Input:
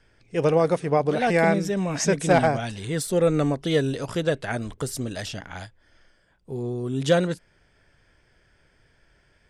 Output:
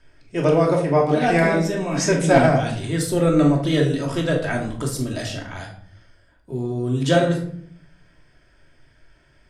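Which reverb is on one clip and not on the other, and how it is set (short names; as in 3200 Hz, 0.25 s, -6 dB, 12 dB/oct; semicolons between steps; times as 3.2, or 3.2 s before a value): shoebox room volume 850 m³, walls furnished, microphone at 2.8 m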